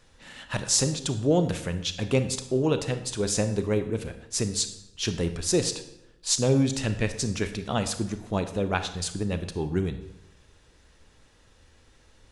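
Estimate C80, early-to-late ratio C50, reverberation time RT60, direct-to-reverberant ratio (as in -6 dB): 13.5 dB, 11.0 dB, 0.85 s, 9.0 dB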